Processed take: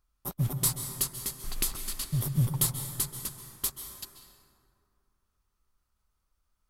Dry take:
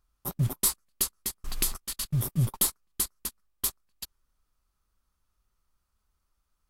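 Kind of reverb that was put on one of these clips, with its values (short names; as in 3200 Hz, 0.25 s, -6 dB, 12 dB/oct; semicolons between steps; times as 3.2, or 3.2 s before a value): plate-style reverb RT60 2.4 s, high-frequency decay 0.45×, pre-delay 0.12 s, DRR 6 dB; gain -2 dB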